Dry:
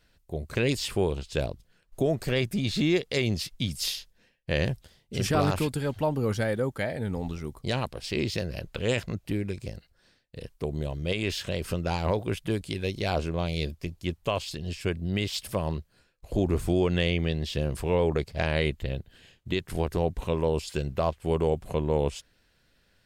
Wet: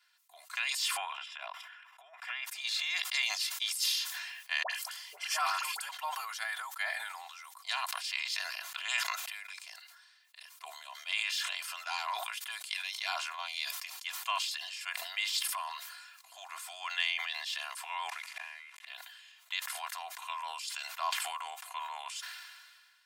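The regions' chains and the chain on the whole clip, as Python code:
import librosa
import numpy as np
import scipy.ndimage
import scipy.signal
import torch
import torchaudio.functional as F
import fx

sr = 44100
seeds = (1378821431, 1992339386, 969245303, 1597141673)

y = fx.chain(x, sr, fx.savgol(points=25),
    fx.low_shelf(hz=260.0, db=-8.0),
    fx.over_compress(threshold_db=-31.0, ratio=-0.5), at=(0.97, 2.46))
y = fx.chain(y, sr, fx.notch(hz=3700.0, q=6.6),
    fx.dispersion(late='highs', ms=70.0, hz=1100.0), at=(4.63, 5.89))
y = fx.chain(y, sr, fx.delta_mod(bps=64000, step_db=-39.5),
    fx.peak_eq(hz=2200.0, db=10.0, octaves=0.9),
    fx.gate_flip(shuts_db=-21.0, range_db=-28), at=(18.09, 18.87))
y = scipy.signal.sosfilt(scipy.signal.butter(8, 870.0, 'highpass', fs=sr, output='sos'), y)
y = y + 0.75 * np.pad(y, (int(2.9 * sr / 1000.0), 0))[:len(y)]
y = fx.sustainer(y, sr, db_per_s=34.0)
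y = F.gain(torch.from_numpy(y), -2.5).numpy()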